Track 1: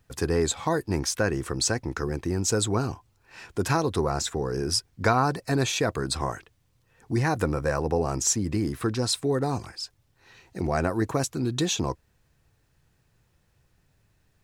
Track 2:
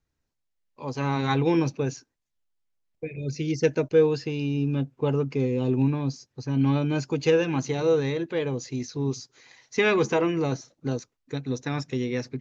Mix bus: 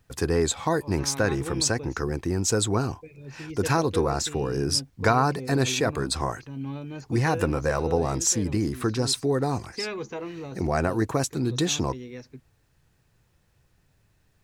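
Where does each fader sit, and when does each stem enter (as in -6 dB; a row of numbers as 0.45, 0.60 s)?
+1.0, -11.5 dB; 0.00, 0.00 s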